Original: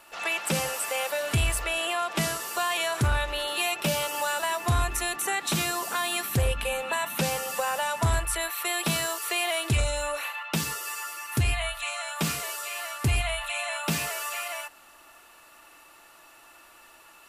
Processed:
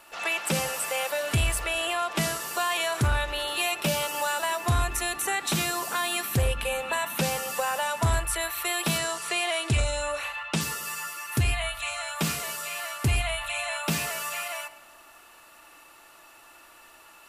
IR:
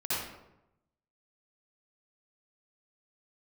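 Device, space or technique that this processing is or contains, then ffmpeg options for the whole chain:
compressed reverb return: -filter_complex "[0:a]asettb=1/sr,asplit=3[a][b][c];[a]atrim=end=8.984[d];[b]atrim=start=8.98:end=10.61,asetpts=PTS-STARTPTS,afade=t=in:d=0.004:c=qsin,afade=t=out:st=1.626:d=0.004:c=qsin,lowpass=f=10k:w=0.5412,lowpass=f=10k:w=1.3066[e];[c]atrim=start=10.606[f];[d][e]acrossfade=d=0.004:c1=hsin:c2=qsin[g];[g][f]acrossfade=d=0.004:c1=qsin:c2=hsin,asplit=2[h][i];[1:a]atrim=start_sample=2205[j];[i][j]afir=irnorm=-1:irlink=0,acompressor=threshold=-27dB:ratio=6,volume=-18dB[k];[h][k]amix=inputs=2:normalize=0"

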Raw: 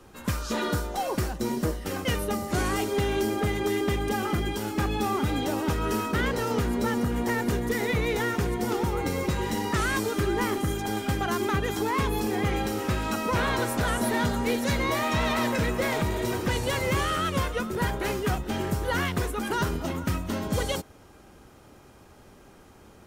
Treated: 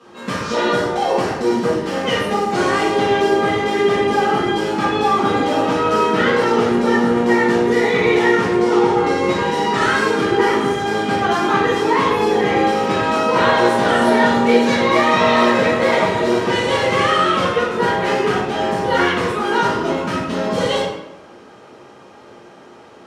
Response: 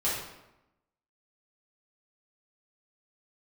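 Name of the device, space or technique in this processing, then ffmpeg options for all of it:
supermarket ceiling speaker: -filter_complex "[0:a]asettb=1/sr,asplit=3[a][b][c];[a]atrim=end=8.524[d];[b]atrim=start=8.52:end=9.25,asetpts=PTS-STARTPTS,afade=t=in:d=0.004:c=qsin,afade=t=out:st=0.726:d=0.004:c=qsin,lowpass=10k[e];[c]atrim=start=9.246[f];[d][e]acrossfade=d=0.004:c1=hsin:c2=qsin[g];[g][f]acrossfade=d=0.004:c1=qsin:c2=hsin,highpass=240,lowpass=5.2k[h];[1:a]atrim=start_sample=2205[i];[h][i]afir=irnorm=-1:irlink=0,volume=3dB"

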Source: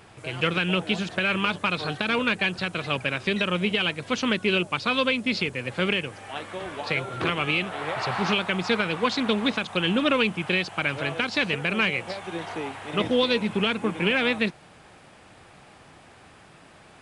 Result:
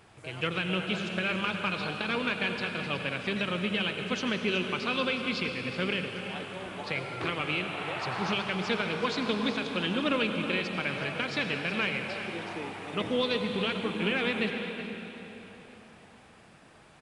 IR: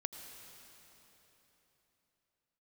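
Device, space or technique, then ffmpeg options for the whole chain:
cave: -filter_complex "[0:a]aecho=1:1:369:0.251[a];[1:a]atrim=start_sample=2205[b];[a][b]afir=irnorm=-1:irlink=0,volume=-4.5dB"

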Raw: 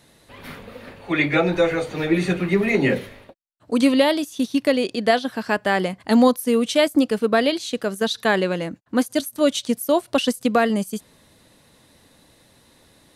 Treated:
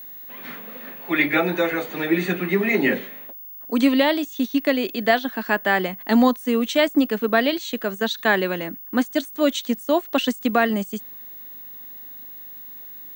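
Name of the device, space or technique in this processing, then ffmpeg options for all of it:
old television with a line whistle: -af "highpass=f=190:w=0.5412,highpass=f=190:w=1.3066,equalizer=f=500:t=q:w=4:g=-5,equalizer=f=1.8k:t=q:w=4:g=4,equalizer=f=5.1k:t=q:w=4:g=-8,lowpass=f=7.6k:w=0.5412,lowpass=f=7.6k:w=1.3066,aeval=exprs='val(0)+0.0158*sin(2*PI*15625*n/s)':c=same"

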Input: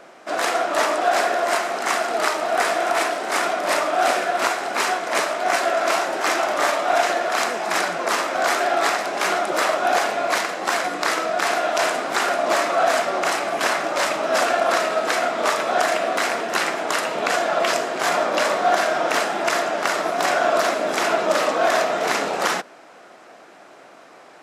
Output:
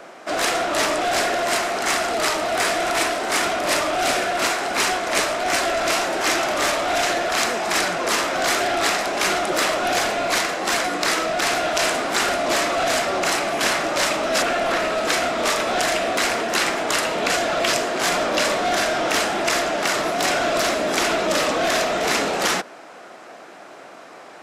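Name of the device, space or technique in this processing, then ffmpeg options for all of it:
one-band saturation: -filter_complex "[0:a]acrossover=split=400|2100[a][b][c];[b]asoftclip=type=tanh:threshold=-27.5dB[d];[a][d][c]amix=inputs=3:normalize=0,asettb=1/sr,asplit=3[e][f][g];[e]atrim=end=14.424[h];[f]atrim=start=14.42:end=14.98,asetpts=PTS-STARTPTS,afade=t=in:d=0.004:c=qsin,afade=t=out:st=0.556:d=0.004:c=qsin,acrossover=split=3200[i][j];[j]acompressor=threshold=-39dB:ratio=4:attack=1:release=60[k];[i][k]amix=inputs=2:normalize=0[l];[g]atrim=start=14.976[m];[h][l]acrossfade=d=0.004:c1=hsin:c2=qsin[n];[n][m]acrossfade=d=0.004:c1=qsin:c2=hsin,volume=4.5dB"

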